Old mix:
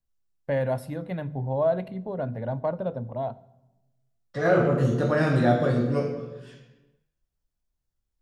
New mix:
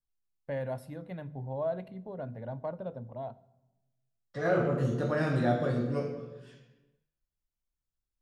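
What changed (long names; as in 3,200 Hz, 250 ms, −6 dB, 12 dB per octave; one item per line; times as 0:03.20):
first voice −9.0 dB
second voice −6.5 dB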